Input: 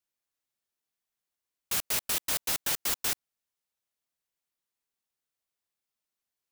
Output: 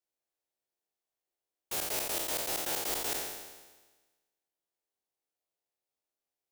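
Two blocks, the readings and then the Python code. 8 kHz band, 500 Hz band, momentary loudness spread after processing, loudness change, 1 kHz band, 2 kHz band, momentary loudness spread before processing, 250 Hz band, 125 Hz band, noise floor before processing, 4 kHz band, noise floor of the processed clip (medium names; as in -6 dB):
-3.5 dB, +5.5 dB, 8 LU, -3.5 dB, +1.0 dB, -3.5 dB, 4 LU, +1.5 dB, -3.5 dB, under -85 dBFS, -3.5 dB, under -85 dBFS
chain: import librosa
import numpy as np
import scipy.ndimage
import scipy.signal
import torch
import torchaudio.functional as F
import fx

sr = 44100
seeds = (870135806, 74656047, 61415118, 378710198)

y = fx.spec_trails(x, sr, decay_s=1.3)
y = fx.band_shelf(y, sr, hz=510.0, db=9.0, octaves=1.7)
y = y * librosa.db_to_amplitude(-8.0)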